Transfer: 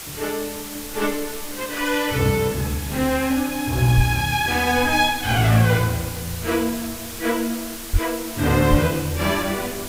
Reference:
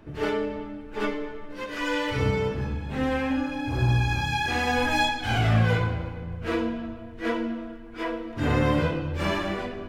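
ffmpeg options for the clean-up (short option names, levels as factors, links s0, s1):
-filter_complex "[0:a]adeclick=t=4,asplit=3[s0][s1][s2];[s0]afade=t=out:st=3.96:d=0.02[s3];[s1]highpass=f=140:w=0.5412,highpass=f=140:w=1.3066,afade=t=in:st=3.96:d=0.02,afade=t=out:st=4.08:d=0.02[s4];[s2]afade=t=in:st=4.08:d=0.02[s5];[s3][s4][s5]amix=inputs=3:normalize=0,asplit=3[s6][s7][s8];[s6]afade=t=out:st=7.92:d=0.02[s9];[s7]highpass=f=140:w=0.5412,highpass=f=140:w=1.3066,afade=t=in:st=7.92:d=0.02,afade=t=out:st=8.04:d=0.02[s10];[s8]afade=t=in:st=8.04:d=0.02[s11];[s9][s10][s11]amix=inputs=3:normalize=0,asplit=3[s12][s13][s14];[s12]afade=t=out:st=8.7:d=0.02[s15];[s13]highpass=f=140:w=0.5412,highpass=f=140:w=1.3066,afade=t=in:st=8.7:d=0.02,afade=t=out:st=8.82:d=0.02[s16];[s14]afade=t=in:st=8.82:d=0.02[s17];[s15][s16][s17]amix=inputs=3:normalize=0,afwtdn=0.02,asetnsamples=n=441:p=0,asendcmd='0.75 volume volume -5dB',volume=1"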